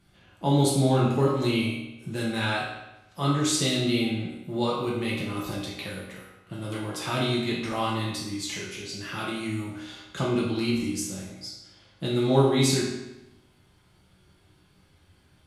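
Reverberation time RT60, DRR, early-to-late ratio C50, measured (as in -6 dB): 0.95 s, -6.0 dB, 1.0 dB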